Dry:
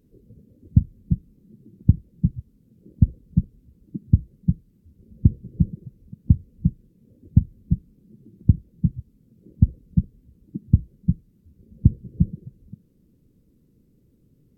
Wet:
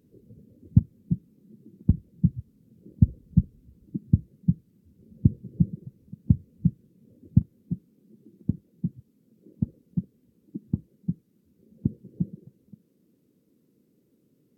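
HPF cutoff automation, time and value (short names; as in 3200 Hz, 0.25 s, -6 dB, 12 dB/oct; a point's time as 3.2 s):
92 Hz
from 0.79 s 160 Hz
from 1.9 s 86 Hz
from 3.08 s 50 Hz
from 3.99 s 120 Hz
from 7.42 s 240 Hz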